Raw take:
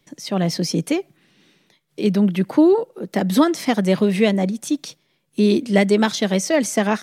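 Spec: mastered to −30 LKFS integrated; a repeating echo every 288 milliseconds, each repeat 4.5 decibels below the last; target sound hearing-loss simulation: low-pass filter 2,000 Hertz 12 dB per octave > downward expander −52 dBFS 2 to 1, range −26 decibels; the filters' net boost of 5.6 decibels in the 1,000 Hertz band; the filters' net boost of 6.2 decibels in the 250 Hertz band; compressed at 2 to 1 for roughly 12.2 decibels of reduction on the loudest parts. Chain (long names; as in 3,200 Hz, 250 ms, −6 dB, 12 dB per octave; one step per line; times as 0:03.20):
parametric band 250 Hz +8 dB
parametric band 1,000 Hz +7 dB
downward compressor 2 to 1, threshold −26 dBFS
low-pass filter 2,000 Hz 12 dB per octave
repeating echo 288 ms, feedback 60%, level −4.5 dB
downward expander −52 dBFS 2 to 1, range −26 dB
level −8 dB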